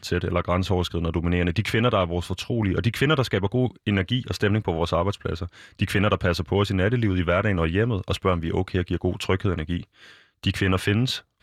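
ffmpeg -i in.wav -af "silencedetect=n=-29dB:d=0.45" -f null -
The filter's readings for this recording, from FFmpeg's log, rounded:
silence_start: 9.81
silence_end: 10.44 | silence_duration: 0.63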